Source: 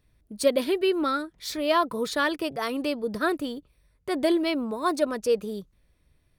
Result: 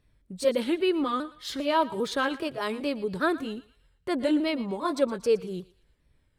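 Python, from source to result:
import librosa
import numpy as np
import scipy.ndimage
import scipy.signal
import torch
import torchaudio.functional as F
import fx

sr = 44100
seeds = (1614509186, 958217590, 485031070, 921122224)

p1 = fx.pitch_ramps(x, sr, semitones=-2.5, every_ms=400)
p2 = fx.high_shelf(p1, sr, hz=9000.0, db=-9.5)
y = p2 + fx.echo_thinned(p2, sr, ms=116, feedback_pct=41, hz=830.0, wet_db=-16.5, dry=0)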